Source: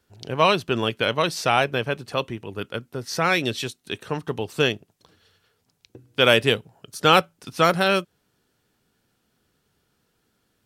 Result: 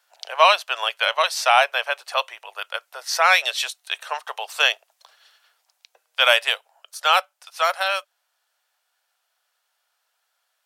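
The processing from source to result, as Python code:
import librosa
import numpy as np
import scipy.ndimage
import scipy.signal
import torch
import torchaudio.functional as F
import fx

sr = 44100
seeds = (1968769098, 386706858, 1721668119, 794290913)

y = scipy.signal.sosfilt(scipy.signal.butter(8, 610.0, 'highpass', fs=sr, output='sos'), x)
y = fx.rider(y, sr, range_db=4, speed_s=2.0)
y = F.gain(torch.from_numpy(y), 3.0).numpy()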